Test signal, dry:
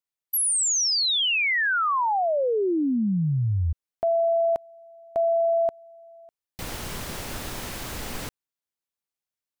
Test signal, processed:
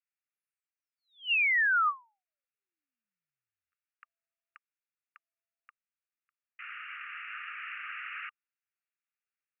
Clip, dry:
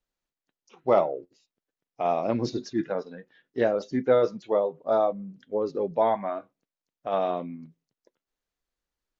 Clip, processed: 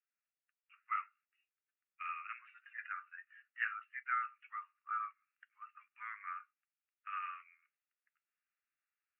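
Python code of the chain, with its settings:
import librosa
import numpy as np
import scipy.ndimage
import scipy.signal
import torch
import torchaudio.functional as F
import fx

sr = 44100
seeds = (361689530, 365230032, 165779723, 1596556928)

y = fx.rider(x, sr, range_db=3, speed_s=2.0)
y = scipy.signal.sosfilt(scipy.signal.ellip(5, 1.0, 80, [1200.0, 2800.0], 'bandpass', fs=sr, output='sos'), y)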